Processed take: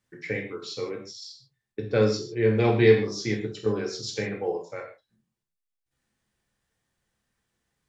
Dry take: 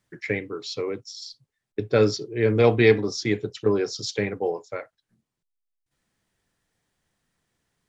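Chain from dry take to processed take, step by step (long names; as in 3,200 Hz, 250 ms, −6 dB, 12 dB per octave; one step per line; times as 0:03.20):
reverb whose tail is shaped and stops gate 180 ms falling, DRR 0 dB
level −5.5 dB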